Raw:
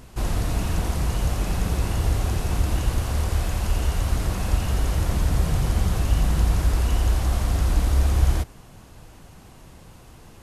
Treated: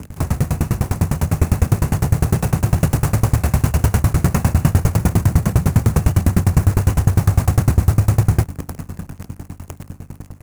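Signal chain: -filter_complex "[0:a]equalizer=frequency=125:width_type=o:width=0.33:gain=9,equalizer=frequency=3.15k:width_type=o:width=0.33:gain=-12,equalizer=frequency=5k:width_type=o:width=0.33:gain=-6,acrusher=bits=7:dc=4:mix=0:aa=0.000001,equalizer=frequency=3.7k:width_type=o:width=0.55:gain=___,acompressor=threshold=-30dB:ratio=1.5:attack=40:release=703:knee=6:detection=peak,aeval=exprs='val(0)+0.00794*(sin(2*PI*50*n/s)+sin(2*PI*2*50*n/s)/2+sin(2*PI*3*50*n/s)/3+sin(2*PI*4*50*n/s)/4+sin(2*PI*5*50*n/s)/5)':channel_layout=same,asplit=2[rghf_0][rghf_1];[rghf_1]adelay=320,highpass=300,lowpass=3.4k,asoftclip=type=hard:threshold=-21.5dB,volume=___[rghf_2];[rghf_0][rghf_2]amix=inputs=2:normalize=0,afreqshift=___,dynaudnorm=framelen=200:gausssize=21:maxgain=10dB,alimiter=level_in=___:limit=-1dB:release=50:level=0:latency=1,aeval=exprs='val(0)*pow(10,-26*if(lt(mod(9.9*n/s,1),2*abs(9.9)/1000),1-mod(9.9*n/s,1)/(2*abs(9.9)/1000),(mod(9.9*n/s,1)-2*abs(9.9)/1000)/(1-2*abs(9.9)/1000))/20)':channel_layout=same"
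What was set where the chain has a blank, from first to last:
-5.5, -28dB, 37, 14.5dB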